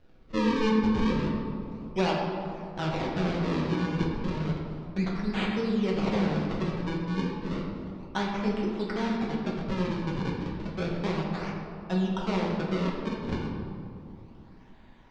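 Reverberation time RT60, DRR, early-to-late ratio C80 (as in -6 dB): 2.6 s, -3.0 dB, 3.0 dB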